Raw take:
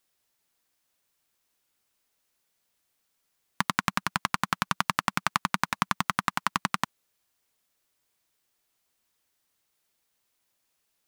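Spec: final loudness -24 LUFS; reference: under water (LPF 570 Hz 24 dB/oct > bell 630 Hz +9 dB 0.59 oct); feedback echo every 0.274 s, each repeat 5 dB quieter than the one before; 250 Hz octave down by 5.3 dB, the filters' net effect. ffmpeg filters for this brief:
-af "lowpass=f=570:w=0.5412,lowpass=f=570:w=1.3066,equalizer=f=250:t=o:g=-8,equalizer=f=630:t=o:w=0.59:g=9,aecho=1:1:274|548|822|1096|1370|1644|1918:0.562|0.315|0.176|0.0988|0.0553|0.031|0.0173,volume=18.5dB"

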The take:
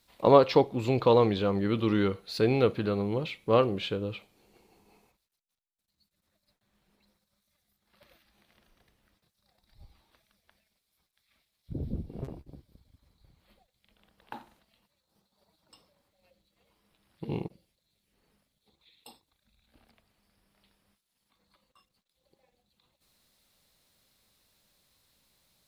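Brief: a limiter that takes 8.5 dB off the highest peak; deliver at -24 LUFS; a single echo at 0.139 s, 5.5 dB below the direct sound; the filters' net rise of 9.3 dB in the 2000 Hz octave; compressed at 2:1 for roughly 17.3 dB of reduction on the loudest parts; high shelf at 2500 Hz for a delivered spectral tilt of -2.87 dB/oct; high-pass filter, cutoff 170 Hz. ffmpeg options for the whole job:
-af "highpass=170,equalizer=f=2k:t=o:g=7.5,highshelf=f=2.5k:g=8.5,acompressor=threshold=-44dB:ratio=2,alimiter=level_in=2.5dB:limit=-24dB:level=0:latency=1,volume=-2.5dB,aecho=1:1:139:0.531,volume=16.5dB"

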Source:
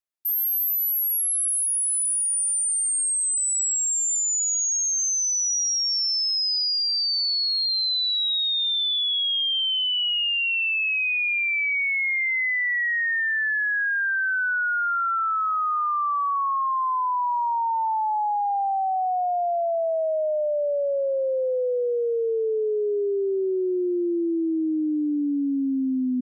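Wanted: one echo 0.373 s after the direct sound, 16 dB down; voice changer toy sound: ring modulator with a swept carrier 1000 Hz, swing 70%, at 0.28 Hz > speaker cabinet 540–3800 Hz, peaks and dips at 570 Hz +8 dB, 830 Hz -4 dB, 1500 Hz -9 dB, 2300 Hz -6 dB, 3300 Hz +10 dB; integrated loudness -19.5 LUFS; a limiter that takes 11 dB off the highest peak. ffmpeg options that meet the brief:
-af "alimiter=level_in=8dB:limit=-24dB:level=0:latency=1,volume=-8dB,aecho=1:1:373:0.158,aeval=exprs='val(0)*sin(2*PI*1000*n/s+1000*0.7/0.28*sin(2*PI*0.28*n/s))':c=same,highpass=540,equalizer=f=570:t=q:w=4:g=8,equalizer=f=830:t=q:w=4:g=-4,equalizer=f=1.5k:t=q:w=4:g=-9,equalizer=f=2.3k:t=q:w=4:g=-6,equalizer=f=3.3k:t=q:w=4:g=10,lowpass=f=3.8k:w=0.5412,lowpass=f=3.8k:w=1.3066,volume=17dB"

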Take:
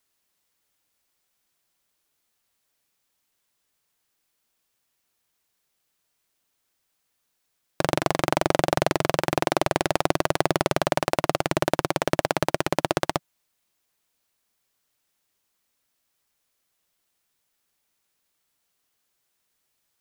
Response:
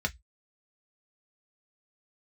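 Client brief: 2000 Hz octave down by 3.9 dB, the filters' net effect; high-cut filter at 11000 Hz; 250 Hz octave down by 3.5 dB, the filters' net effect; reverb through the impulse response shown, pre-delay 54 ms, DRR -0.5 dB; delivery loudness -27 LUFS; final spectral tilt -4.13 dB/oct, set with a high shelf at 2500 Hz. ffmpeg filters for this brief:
-filter_complex "[0:a]lowpass=11k,equalizer=f=250:t=o:g=-5.5,equalizer=f=2k:t=o:g=-7.5,highshelf=f=2.5k:g=5,asplit=2[a][b];[1:a]atrim=start_sample=2205,adelay=54[c];[b][c]afir=irnorm=-1:irlink=0,volume=-6dB[d];[a][d]amix=inputs=2:normalize=0,volume=-4dB"

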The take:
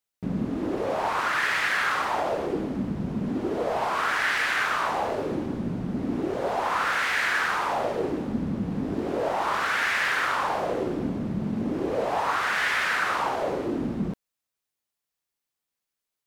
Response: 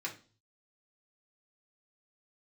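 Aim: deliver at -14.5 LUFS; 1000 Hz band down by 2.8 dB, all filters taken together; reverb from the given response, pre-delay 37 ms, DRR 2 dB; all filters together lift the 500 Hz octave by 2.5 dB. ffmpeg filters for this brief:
-filter_complex "[0:a]equalizer=f=500:t=o:g=4.5,equalizer=f=1k:t=o:g=-5,asplit=2[a][b];[1:a]atrim=start_sample=2205,adelay=37[c];[b][c]afir=irnorm=-1:irlink=0,volume=-4dB[d];[a][d]amix=inputs=2:normalize=0,volume=10.5dB"

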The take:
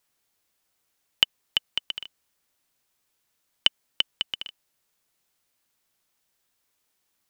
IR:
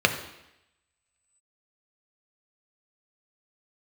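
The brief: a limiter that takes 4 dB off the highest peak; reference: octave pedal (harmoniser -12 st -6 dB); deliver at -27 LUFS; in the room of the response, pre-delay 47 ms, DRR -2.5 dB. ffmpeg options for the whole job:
-filter_complex "[0:a]alimiter=limit=-5dB:level=0:latency=1,asplit=2[a][b];[1:a]atrim=start_sample=2205,adelay=47[c];[b][c]afir=irnorm=-1:irlink=0,volume=-14.5dB[d];[a][d]amix=inputs=2:normalize=0,asplit=2[e][f];[f]asetrate=22050,aresample=44100,atempo=2,volume=-6dB[g];[e][g]amix=inputs=2:normalize=0,volume=-1dB"

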